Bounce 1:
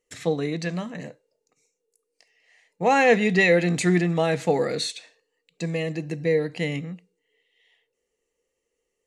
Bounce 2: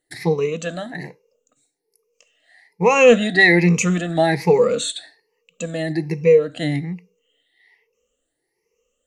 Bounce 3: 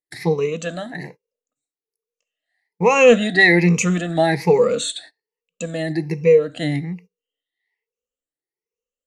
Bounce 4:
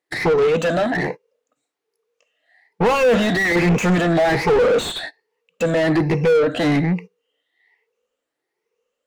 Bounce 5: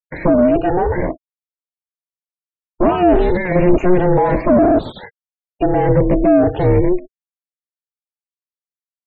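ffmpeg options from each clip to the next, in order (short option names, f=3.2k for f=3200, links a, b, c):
-af "afftfilt=real='re*pow(10,19/40*sin(2*PI*(0.81*log(max(b,1)*sr/1024/100)/log(2)-(1.2)*(pts-256)/sr)))':imag='im*pow(10,19/40*sin(2*PI*(0.81*log(max(b,1)*sr/1024/100)/log(2)-(1.2)*(pts-256)/sr)))':win_size=1024:overlap=0.75,volume=1.5dB"
-af "agate=range=-21dB:threshold=-40dB:ratio=16:detection=peak"
-filter_complex "[0:a]asplit=2[a][b];[b]highpass=f=720:p=1,volume=36dB,asoftclip=type=tanh:threshold=-1dB[c];[a][c]amix=inputs=2:normalize=0,lowpass=f=1k:p=1,volume=-6dB,volume=-6.5dB"
-af "tiltshelf=f=1.2k:g=9.5,aeval=exprs='val(0)*sin(2*PI*180*n/s)':c=same,afftfilt=real='re*gte(hypot(re,im),0.0251)':imag='im*gte(hypot(re,im),0.0251)':win_size=1024:overlap=0.75"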